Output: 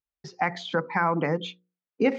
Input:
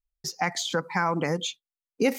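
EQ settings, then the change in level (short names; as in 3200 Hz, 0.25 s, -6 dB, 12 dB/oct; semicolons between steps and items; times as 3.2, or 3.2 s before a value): BPF 100–2700 Hz; air absorption 64 m; notches 60/120/180/240/300/360/420/480/540 Hz; +2.0 dB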